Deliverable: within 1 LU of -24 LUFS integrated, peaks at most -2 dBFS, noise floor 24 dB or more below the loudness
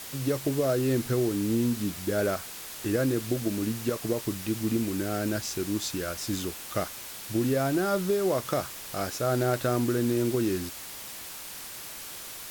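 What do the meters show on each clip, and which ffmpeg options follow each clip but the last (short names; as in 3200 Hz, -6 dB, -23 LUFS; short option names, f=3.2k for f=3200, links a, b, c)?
noise floor -41 dBFS; noise floor target -53 dBFS; loudness -29.0 LUFS; peak -12.5 dBFS; loudness target -24.0 LUFS
-> -af "afftdn=nr=12:nf=-41"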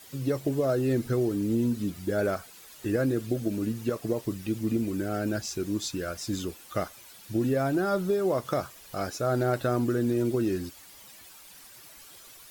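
noise floor -50 dBFS; noise floor target -53 dBFS
-> -af "afftdn=nr=6:nf=-50"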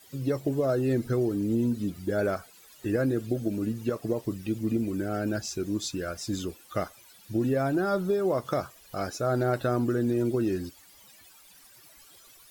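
noise floor -55 dBFS; loudness -29.0 LUFS; peak -13.5 dBFS; loudness target -24.0 LUFS
-> -af "volume=5dB"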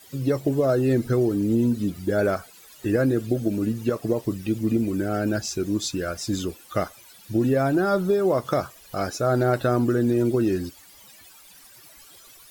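loudness -24.0 LUFS; peak -8.5 dBFS; noise floor -50 dBFS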